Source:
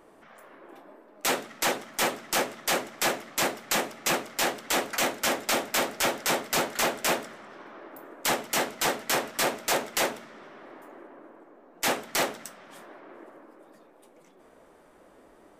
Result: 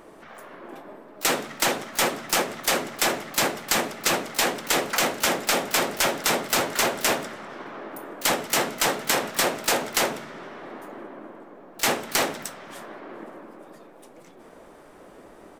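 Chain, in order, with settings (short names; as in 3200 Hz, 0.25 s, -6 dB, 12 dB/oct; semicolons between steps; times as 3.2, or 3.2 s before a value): harmoniser -7 st -8 dB, +12 st -17 dB; compressor, threshold -26 dBFS, peak gain reduction 6 dB; gain +7 dB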